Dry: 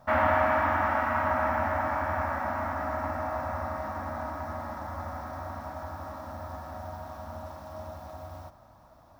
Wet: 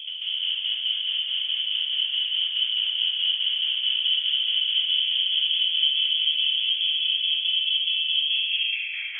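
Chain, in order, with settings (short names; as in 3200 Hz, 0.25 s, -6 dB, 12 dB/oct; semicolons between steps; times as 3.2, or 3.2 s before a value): tracing distortion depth 0.44 ms; low shelf 150 Hz +4.5 dB; de-hum 78.78 Hz, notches 2; sine folder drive 19 dB, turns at -17 dBFS; tremolo saw down 4.7 Hz, depth 90%; low-pass sweep 300 Hz -> 2000 Hz, 8.16–9.14; inverted band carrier 3300 Hz; non-linear reverb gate 0.32 s rising, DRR -4.5 dB; gain -3.5 dB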